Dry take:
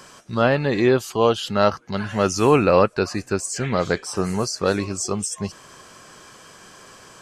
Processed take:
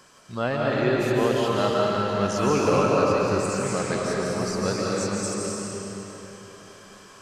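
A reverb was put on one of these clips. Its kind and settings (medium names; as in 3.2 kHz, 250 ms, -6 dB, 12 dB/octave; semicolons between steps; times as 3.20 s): algorithmic reverb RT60 3.7 s, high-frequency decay 0.9×, pre-delay 110 ms, DRR -4.5 dB; trim -8.5 dB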